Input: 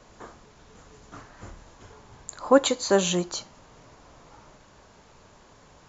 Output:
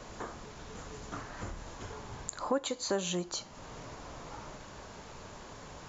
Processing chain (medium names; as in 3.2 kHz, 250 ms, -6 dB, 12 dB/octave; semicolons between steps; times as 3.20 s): compression 2.5:1, threshold -44 dBFS, peak gain reduction 21 dB; trim +6 dB